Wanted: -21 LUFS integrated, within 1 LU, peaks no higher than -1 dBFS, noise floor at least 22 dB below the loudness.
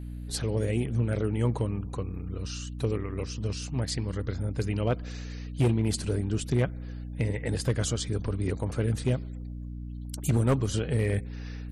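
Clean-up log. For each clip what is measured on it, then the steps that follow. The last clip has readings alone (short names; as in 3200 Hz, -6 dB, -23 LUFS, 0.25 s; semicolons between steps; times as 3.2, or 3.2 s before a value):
clipped 0.5%; flat tops at -18.0 dBFS; hum 60 Hz; harmonics up to 300 Hz; hum level -34 dBFS; loudness -30.0 LUFS; peak -18.0 dBFS; loudness target -21.0 LUFS
-> clip repair -18 dBFS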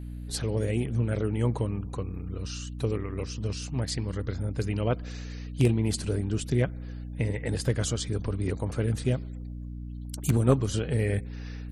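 clipped 0.0%; hum 60 Hz; harmonics up to 300 Hz; hum level -34 dBFS
-> notches 60/120/180/240/300 Hz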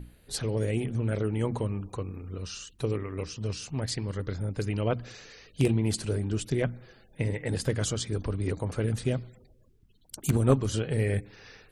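hum none; loudness -30.5 LUFS; peak -8.5 dBFS; loudness target -21.0 LUFS
-> gain +9.5 dB; limiter -1 dBFS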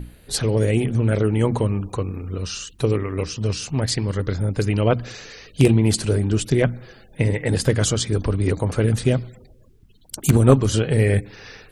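loudness -21.0 LUFS; peak -1.0 dBFS; noise floor -50 dBFS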